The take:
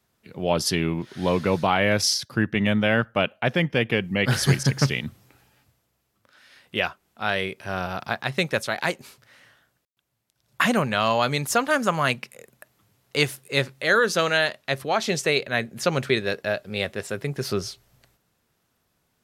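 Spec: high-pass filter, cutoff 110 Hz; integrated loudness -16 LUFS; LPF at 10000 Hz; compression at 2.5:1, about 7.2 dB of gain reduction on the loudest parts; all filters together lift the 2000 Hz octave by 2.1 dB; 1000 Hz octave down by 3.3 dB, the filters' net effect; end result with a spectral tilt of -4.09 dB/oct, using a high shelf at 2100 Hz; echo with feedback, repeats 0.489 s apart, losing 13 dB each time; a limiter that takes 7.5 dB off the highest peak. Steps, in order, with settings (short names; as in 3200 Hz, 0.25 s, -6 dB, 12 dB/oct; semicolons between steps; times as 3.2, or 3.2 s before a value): HPF 110 Hz; LPF 10000 Hz; bell 1000 Hz -6 dB; bell 2000 Hz +6.5 dB; high shelf 2100 Hz -3.5 dB; compressor 2.5:1, threshold -26 dBFS; limiter -18 dBFS; feedback echo 0.489 s, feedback 22%, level -13 dB; gain +15.5 dB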